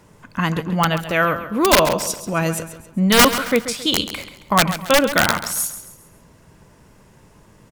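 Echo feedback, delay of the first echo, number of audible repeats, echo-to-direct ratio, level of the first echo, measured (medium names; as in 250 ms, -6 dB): 38%, 135 ms, 3, -11.5 dB, -12.0 dB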